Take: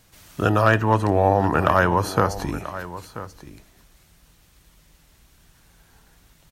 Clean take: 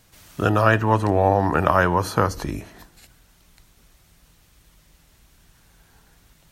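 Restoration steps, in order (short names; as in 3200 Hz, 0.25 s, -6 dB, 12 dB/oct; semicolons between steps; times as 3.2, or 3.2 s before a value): clip repair -4.5 dBFS; inverse comb 0.985 s -14.5 dB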